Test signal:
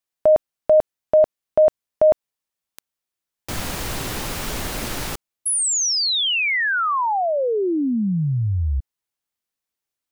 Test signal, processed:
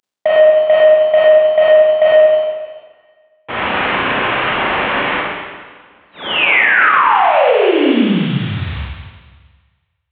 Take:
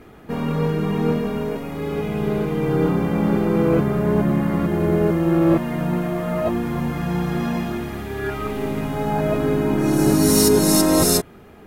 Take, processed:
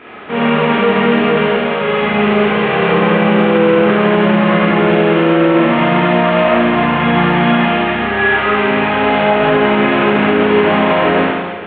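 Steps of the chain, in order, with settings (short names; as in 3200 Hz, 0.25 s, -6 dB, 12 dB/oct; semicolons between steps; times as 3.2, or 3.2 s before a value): CVSD 16 kbps; HPF 1000 Hz 6 dB/oct; compressor 4:1, threshold -26 dBFS; Schroeder reverb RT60 1.5 s, combs from 30 ms, DRR -7 dB; maximiser +14.5 dB; gain -1.5 dB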